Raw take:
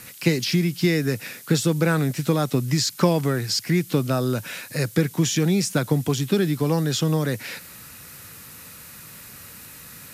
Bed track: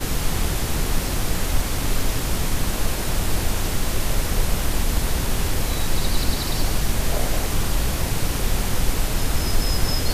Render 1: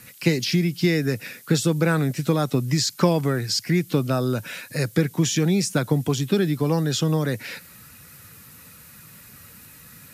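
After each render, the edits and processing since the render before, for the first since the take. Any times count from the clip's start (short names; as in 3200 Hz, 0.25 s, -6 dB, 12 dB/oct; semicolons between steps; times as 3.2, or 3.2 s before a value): denoiser 6 dB, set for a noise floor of -43 dBFS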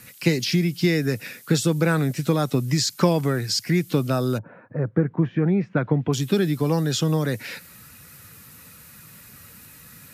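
4.37–6.12 LPF 1000 Hz -> 2700 Hz 24 dB/oct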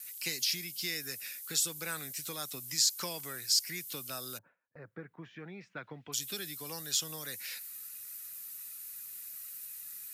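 pre-emphasis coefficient 0.97; gate with hold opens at -48 dBFS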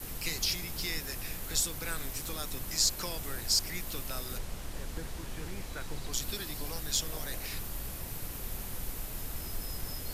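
add bed track -18.5 dB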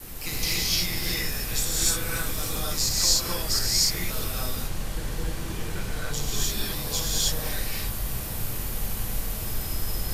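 non-linear reverb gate 0.33 s rising, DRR -7 dB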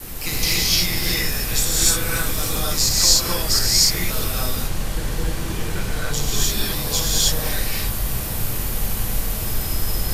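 gain +6.5 dB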